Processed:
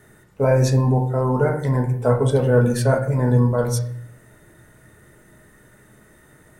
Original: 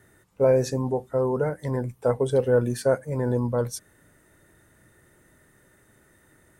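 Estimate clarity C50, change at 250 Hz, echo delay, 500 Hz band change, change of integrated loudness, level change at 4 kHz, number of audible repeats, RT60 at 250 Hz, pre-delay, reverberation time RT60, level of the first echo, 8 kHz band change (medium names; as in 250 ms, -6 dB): 9.0 dB, +6.5 dB, no echo, +2.5 dB, +5.5 dB, +6.0 dB, no echo, 0.90 s, 5 ms, 0.65 s, no echo, +5.5 dB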